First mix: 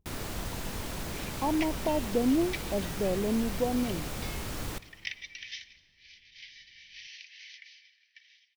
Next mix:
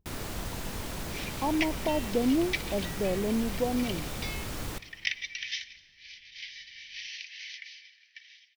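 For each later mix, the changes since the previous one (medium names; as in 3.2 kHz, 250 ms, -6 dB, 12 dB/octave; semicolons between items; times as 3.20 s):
second sound +6.5 dB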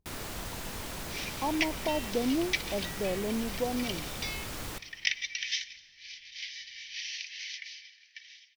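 second sound: remove distance through air 100 m; master: add bass shelf 470 Hz -5 dB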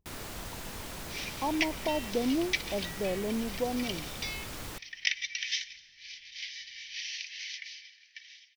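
first sound: send -11.5 dB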